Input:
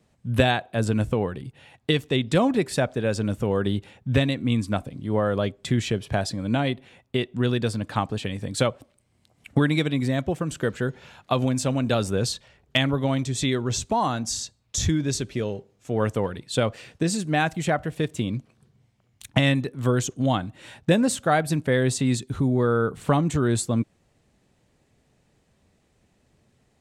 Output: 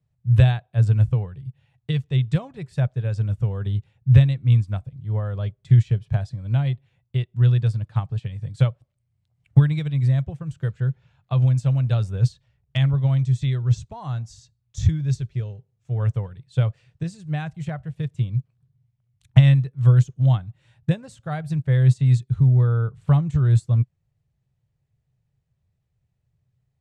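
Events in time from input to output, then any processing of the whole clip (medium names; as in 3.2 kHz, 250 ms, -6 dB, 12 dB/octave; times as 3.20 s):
10.80–11.43 s: treble shelf 6.4 kHz -6 dB
whole clip: Bessel low-pass 7.4 kHz, order 2; resonant low shelf 180 Hz +11 dB, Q 3; upward expansion 1.5:1, over -30 dBFS; trim -4.5 dB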